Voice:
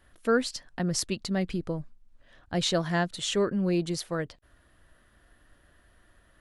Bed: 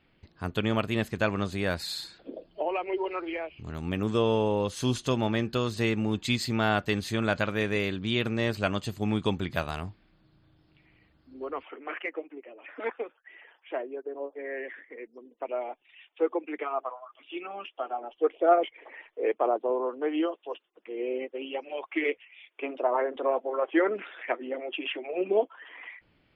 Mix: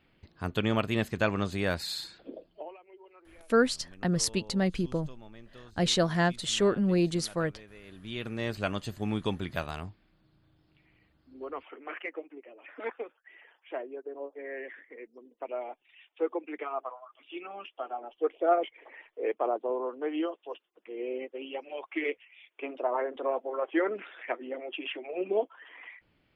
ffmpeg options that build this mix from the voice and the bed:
-filter_complex "[0:a]adelay=3250,volume=1dB[a];[1:a]volume=19.5dB,afade=t=out:st=2.19:d=0.58:silence=0.0707946,afade=t=in:st=7.83:d=0.77:silence=0.1[b];[a][b]amix=inputs=2:normalize=0"

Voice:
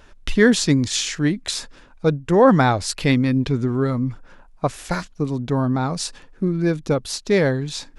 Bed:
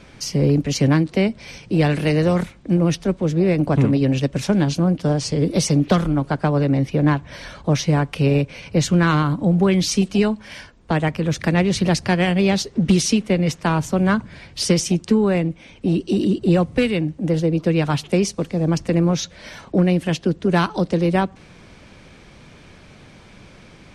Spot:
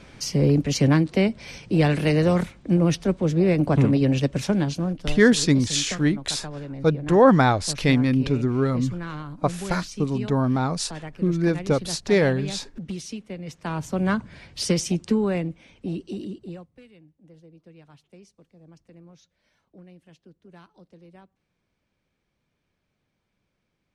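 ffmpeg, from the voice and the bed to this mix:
-filter_complex "[0:a]adelay=4800,volume=-1.5dB[a];[1:a]volume=10dB,afade=t=out:st=4.27:d=0.97:silence=0.177828,afade=t=in:st=13.45:d=0.63:silence=0.251189,afade=t=out:st=15.14:d=1.55:silence=0.0473151[b];[a][b]amix=inputs=2:normalize=0"

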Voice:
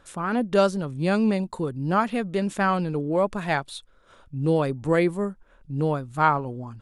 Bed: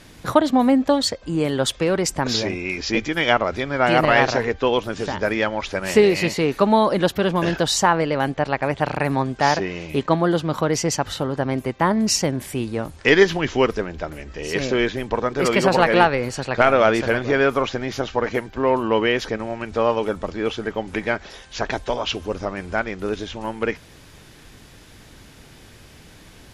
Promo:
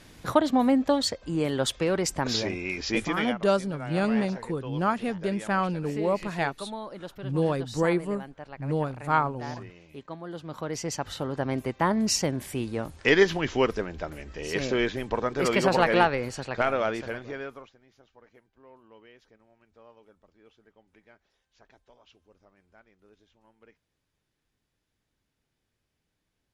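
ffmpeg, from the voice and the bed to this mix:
-filter_complex "[0:a]adelay=2900,volume=-3.5dB[a];[1:a]volume=10dB,afade=t=out:st=3.11:d=0.24:silence=0.16788,afade=t=in:st=10.24:d=1.3:silence=0.16788,afade=t=out:st=15.95:d=1.79:silence=0.0354813[b];[a][b]amix=inputs=2:normalize=0"

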